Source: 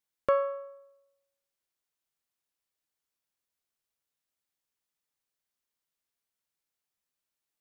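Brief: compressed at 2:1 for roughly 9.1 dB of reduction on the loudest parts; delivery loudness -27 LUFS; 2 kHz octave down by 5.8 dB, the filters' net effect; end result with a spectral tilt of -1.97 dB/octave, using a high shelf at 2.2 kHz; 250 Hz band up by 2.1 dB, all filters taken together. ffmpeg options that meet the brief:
-af "equalizer=f=250:t=o:g=3,equalizer=f=2000:t=o:g=-4.5,highshelf=f=2200:g=-6,acompressor=threshold=0.0126:ratio=2,volume=4.22"

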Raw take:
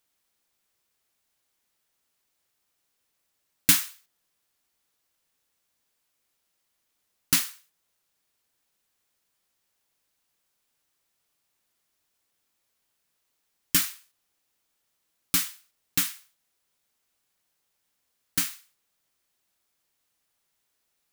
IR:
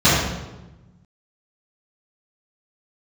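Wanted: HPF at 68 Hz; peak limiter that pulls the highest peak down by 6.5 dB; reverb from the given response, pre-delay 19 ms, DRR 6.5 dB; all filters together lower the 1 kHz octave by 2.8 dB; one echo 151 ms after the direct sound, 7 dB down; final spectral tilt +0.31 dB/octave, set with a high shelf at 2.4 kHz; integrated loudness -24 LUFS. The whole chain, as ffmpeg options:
-filter_complex "[0:a]highpass=68,equalizer=f=1000:t=o:g=-6,highshelf=f=2400:g=7,alimiter=limit=0.708:level=0:latency=1,aecho=1:1:151:0.447,asplit=2[s0][s1];[1:a]atrim=start_sample=2205,adelay=19[s2];[s1][s2]afir=irnorm=-1:irlink=0,volume=0.0266[s3];[s0][s3]amix=inputs=2:normalize=0,volume=0.708"

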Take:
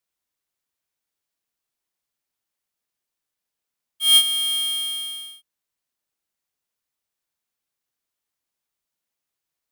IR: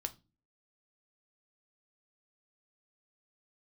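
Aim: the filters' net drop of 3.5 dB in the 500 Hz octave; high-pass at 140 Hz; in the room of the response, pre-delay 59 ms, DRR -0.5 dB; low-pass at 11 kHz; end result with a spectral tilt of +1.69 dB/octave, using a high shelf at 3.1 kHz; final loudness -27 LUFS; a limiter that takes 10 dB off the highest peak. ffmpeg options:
-filter_complex "[0:a]highpass=140,lowpass=11000,equalizer=f=500:t=o:g=-5.5,highshelf=f=3100:g=-4,alimiter=limit=0.0841:level=0:latency=1,asplit=2[s0][s1];[1:a]atrim=start_sample=2205,adelay=59[s2];[s1][s2]afir=irnorm=-1:irlink=0,volume=1.19[s3];[s0][s3]amix=inputs=2:normalize=0,volume=0.376"

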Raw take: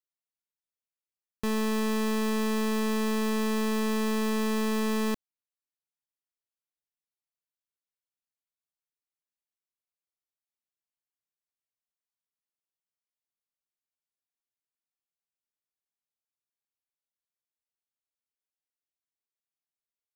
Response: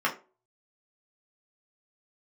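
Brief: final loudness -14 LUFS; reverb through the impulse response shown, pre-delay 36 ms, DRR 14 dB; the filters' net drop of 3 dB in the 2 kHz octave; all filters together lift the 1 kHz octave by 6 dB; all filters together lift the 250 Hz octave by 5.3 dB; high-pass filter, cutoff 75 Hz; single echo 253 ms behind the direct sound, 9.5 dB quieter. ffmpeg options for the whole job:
-filter_complex "[0:a]highpass=75,equalizer=f=250:t=o:g=6,equalizer=f=1000:t=o:g=8,equalizer=f=2000:t=o:g=-6,aecho=1:1:253:0.335,asplit=2[s0][s1];[1:a]atrim=start_sample=2205,adelay=36[s2];[s1][s2]afir=irnorm=-1:irlink=0,volume=0.0501[s3];[s0][s3]amix=inputs=2:normalize=0,volume=2.82"

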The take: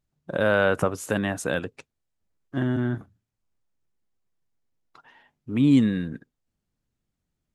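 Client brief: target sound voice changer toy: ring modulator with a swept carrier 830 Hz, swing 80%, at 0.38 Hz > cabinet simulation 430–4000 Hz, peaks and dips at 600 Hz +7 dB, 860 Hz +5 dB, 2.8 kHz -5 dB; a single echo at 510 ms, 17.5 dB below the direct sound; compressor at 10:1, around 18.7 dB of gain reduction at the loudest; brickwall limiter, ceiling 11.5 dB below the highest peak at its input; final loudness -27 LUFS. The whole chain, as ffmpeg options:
-af "acompressor=threshold=0.0224:ratio=10,alimiter=level_in=2.11:limit=0.0631:level=0:latency=1,volume=0.473,aecho=1:1:510:0.133,aeval=exprs='val(0)*sin(2*PI*830*n/s+830*0.8/0.38*sin(2*PI*0.38*n/s))':c=same,highpass=430,equalizer=f=600:t=q:w=4:g=7,equalizer=f=860:t=q:w=4:g=5,equalizer=f=2800:t=q:w=4:g=-5,lowpass=f=4000:w=0.5412,lowpass=f=4000:w=1.3066,volume=5.96"

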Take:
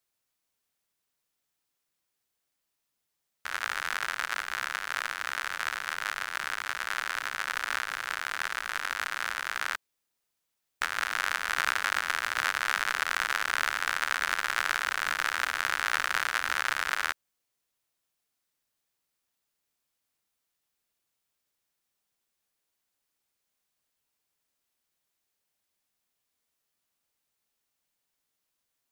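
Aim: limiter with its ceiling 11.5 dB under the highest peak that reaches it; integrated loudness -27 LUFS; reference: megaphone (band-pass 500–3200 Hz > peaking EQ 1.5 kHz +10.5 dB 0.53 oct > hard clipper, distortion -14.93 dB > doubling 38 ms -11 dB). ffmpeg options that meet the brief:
-filter_complex "[0:a]alimiter=limit=0.106:level=0:latency=1,highpass=500,lowpass=3200,equalizer=f=1500:t=o:w=0.53:g=10.5,asoftclip=type=hard:threshold=0.0708,asplit=2[s0][s1];[s1]adelay=38,volume=0.282[s2];[s0][s2]amix=inputs=2:normalize=0,volume=1.58"

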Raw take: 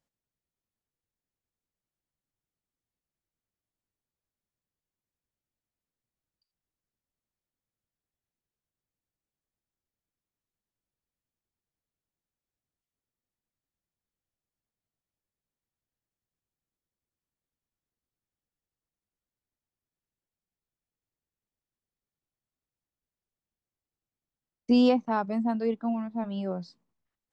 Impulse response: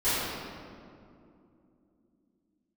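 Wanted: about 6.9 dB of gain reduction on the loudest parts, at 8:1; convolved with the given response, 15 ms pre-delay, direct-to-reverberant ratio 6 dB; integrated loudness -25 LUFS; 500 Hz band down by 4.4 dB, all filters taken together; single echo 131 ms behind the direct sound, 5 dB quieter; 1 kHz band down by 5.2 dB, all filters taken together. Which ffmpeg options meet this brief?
-filter_complex "[0:a]equalizer=f=500:t=o:g=-3.5,equalizer=f=1000:t=o:g=-5.5,acompressor=threshold=0.0562:ratio=8,aecho=1:1:131:0.562,asplit=2[s0][s1];[1:a]atrim=start_sample=2205,adelay=15[s2];[s1][s2]afir=irnorm=-1:irlink=0,volume=0.106[s3];[s0][s3]amix=inputs=2:normalize=0,volume=1.88"

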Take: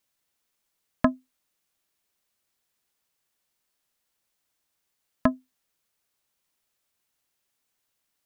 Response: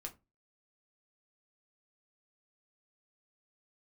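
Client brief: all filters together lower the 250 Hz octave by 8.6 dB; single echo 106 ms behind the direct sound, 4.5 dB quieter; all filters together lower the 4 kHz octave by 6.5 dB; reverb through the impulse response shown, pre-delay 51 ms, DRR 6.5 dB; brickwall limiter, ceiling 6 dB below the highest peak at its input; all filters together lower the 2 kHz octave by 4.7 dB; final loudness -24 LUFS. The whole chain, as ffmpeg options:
-filter_complex "[0:a]equalizer=f=250:t=o:g=-9,equalizer=f=2000:t=o:g=-4.5,equalizer=f=4000:t=o:g=-7,alimiter=limit=0.2:level=0:latency=1,aecho=1:1:106:0.596,asplit=2[s0][s1];[1:a]atrim=start_sample=2205,adelay=51[s2];[s1][s2]afir=irnorm=-1:irlink=0,volume=0.708[s3];[s0][s3]amix=inputs=2:normalize=0,volume=4.22"

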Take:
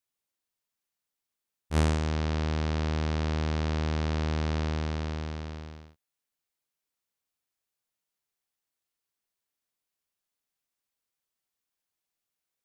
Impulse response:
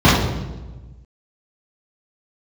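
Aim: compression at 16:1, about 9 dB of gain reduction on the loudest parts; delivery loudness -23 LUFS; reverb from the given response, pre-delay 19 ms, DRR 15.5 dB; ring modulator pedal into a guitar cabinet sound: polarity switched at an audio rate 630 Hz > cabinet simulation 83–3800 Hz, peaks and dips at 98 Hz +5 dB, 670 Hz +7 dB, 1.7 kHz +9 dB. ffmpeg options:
-filter_complex "[0:a]acompressor=threshold=0.0355:ratio=16,asplit=2[s0][s1];[1:a]atrim=start_sample=2205,adelay=19[s2];[s1][s2]afir=irnorm=-1:irlink=0,volume=0.00668[s3];[s0][s3]amix=inputs=2:normalize=0,aeval=exprs='val(0)*sgn(sin(2*PI*630*n/s))':c=same,highpass=83,equalizer=f=98:t=q:w=4:g=5,equalizer=f=670:t=q:w=4:g=7,equalizer=f=1700:t=q:w=4:g=9,lowpass=f=3800:w=0.5412,lowpass=f=3800:w=1.3066,volume=1.78"

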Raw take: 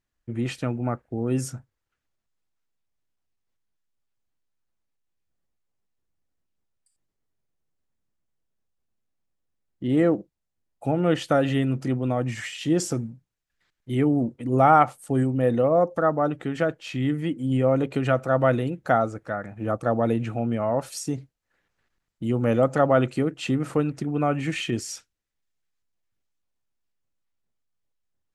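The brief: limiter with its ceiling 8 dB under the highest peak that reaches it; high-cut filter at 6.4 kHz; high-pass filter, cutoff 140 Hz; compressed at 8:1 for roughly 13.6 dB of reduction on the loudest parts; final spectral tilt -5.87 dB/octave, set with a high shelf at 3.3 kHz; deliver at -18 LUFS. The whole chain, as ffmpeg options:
-af "highpass=140,lowpass=6400,highshelf=f=3300:g=-4.5,acompressor=threshold=0.0501:ratio=8,volume=5.96,alimiter=limit=0.447:level=0:latency=1"

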